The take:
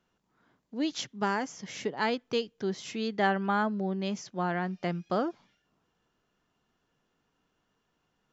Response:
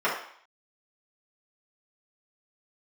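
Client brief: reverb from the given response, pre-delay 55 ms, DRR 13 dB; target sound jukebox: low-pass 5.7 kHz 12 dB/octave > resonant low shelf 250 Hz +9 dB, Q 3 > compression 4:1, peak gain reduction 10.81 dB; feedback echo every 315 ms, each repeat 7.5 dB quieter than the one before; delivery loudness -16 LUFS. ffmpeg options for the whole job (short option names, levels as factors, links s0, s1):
-filter_complex "[0:a]aecho=1:1:315|630|945|1260|1575:0.422|0.177|0.0744|0.0312|0.0131,asplit=2[s0][s1];[1:a]atrim=start_sample=2205,adelay=55[s2];[s1][s2]afir=irnorm=-1:irlink=0,volume=0.0398[s3];[s0][s3]amix=inputs=2:normalize=0,lowpass=5700,lowshelf=f=250:t=q:w=3:g=9,acompressor=threshold=0.0447:ratio=4,volume=5.31"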